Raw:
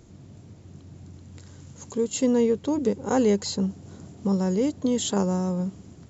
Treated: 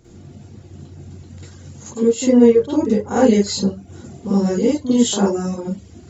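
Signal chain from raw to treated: reverb RT60 0.30 s, pre-delay 45 ms, DRR -10 dB; reverb removal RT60 0.57 s; 1.91–3.24 high shelf 4800 Hz -5.5 dB; gain -2 dB

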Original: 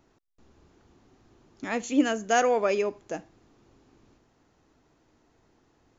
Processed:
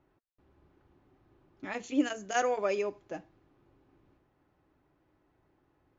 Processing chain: low-pass opened by the level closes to 2500 Hz, open at -20 dBFS; notch comb 230 Hz; gain -4.5 dB

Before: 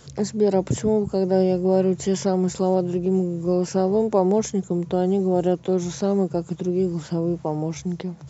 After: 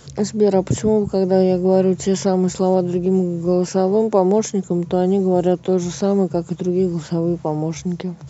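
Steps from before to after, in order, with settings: 3.69–4.66 HPF 140 Hz; gain +4 dB

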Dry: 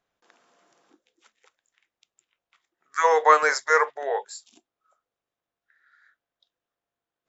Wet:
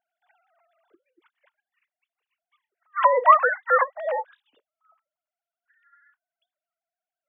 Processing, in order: sine-wave speech; gain +1 dB

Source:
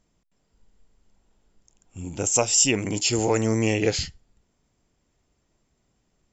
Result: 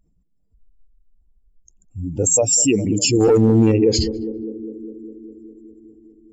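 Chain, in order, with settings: spectral contrast raised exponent 2.3; 3.2–3.72 sample leveller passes 1; narrowing echo 0.202 s, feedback 79%, band-pass 300 Hz, level -12.5 dB; maximiser +14 dB; gain -6 dB

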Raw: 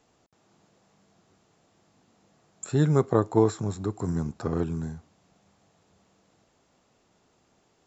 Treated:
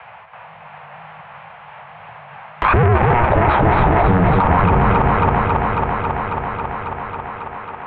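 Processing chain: repeated pitch sweeps +2 st, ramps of 0.471 s; elliptic band-stop 220–1100 Hz, stop band 40 dB; sample leveller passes 5; air absorption 270 m; thinning echo 0.273 s, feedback 68%, high-pass 300 Hz, level -6 dB; on a send at -15.5 dB: reverb RT60 2.6 s, pre-delay 7 ms; on the sum: mistuned SSB -360 Hz 340–3000 Hz; maximiser +31.5 dB; three-band squash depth 70%; gain -4.5 dB

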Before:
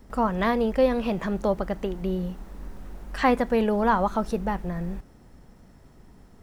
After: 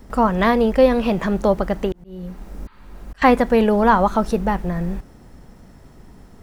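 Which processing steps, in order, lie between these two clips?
1.92–3.22 auto swell 0.543 s; 2.29–3.04 spectral repair 840–4800 Hz after; gain +7 dB

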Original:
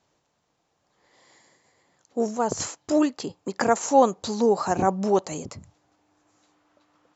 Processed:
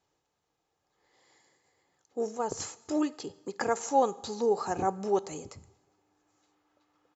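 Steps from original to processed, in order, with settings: comb 2.4 ms, depth 35%; two-slope reverb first 1 s, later 3 s, from -23 dB, DRR 17 dB; gain -8 dB

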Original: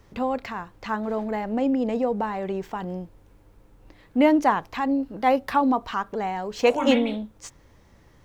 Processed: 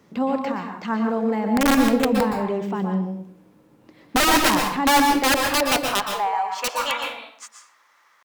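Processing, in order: high-pass sweep 190 Hz -> 1200 Hz, 4.59–6.63; wrapped overs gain 13 dB; pitch shift +0.5 st; on a send: reverb RT60 0.55 s, pre-delay 0.113 s, DRR 3 dB

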